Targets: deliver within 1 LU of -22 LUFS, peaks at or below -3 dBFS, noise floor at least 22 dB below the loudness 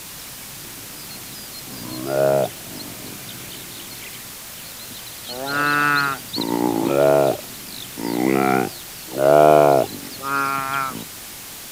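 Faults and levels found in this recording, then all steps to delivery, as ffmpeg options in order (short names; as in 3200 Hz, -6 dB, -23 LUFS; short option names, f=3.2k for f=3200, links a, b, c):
noise floor -36 dBFS; noise floor target -42 dBFS; loudness -19.5 LUFS; peak -1.0 dBFS; loudness target -22.0 LUFS
-> -af "afftdn=nr=6:nf=-36"
-af "volume=-2.5dB"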